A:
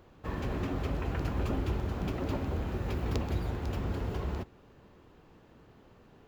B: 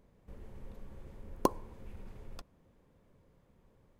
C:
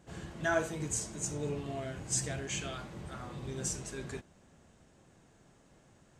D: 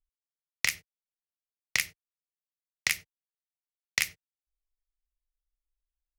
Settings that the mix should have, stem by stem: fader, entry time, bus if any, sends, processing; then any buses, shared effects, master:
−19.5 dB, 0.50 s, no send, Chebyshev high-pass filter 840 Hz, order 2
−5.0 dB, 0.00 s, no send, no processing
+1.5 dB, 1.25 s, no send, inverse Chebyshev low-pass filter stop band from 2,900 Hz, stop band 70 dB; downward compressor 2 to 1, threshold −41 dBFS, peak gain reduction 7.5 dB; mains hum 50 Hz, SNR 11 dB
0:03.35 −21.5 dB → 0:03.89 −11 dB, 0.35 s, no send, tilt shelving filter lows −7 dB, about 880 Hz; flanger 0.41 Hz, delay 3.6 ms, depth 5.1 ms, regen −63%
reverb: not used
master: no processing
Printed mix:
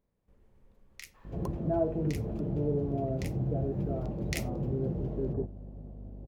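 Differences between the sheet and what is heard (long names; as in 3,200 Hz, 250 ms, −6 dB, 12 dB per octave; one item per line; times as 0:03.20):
stem A: entry 0.50 s → 0.90 s
stem B −5.0 dB → −14.0 dB
stem C +1.5 dB → +11.5 dB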